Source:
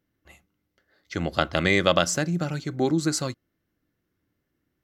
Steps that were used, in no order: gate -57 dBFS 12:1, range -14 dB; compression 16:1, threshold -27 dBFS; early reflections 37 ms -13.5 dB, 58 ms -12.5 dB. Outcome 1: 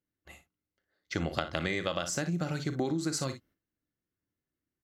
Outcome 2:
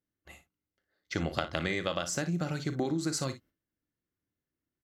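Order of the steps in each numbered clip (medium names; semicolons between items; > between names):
gate > early reflections > compression; compression > gate > early reflections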